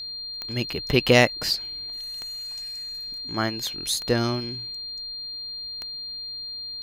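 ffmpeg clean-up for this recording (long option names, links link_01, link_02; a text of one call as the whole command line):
ffmpeg -i in.wav -af "adeclick=threshold=4,bandreject=frequency=4200:width=30" out.wav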